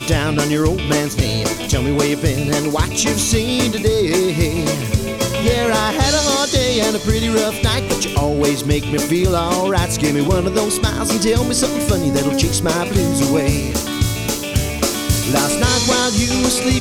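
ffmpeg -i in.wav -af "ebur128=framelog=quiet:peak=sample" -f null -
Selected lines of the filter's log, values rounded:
Integrated loudness:
  I:         -16.8 LUFS
  Threshold: -26.7 LUFS
Loudness range:
  LRA:         1.1 LU
  Threshold: -36.8 LUFS
  LRA low:   -17.4 LUFS
  LRA high:  -16.3 LUFS
Sample peak:
  Peak:       -4.9 dBFS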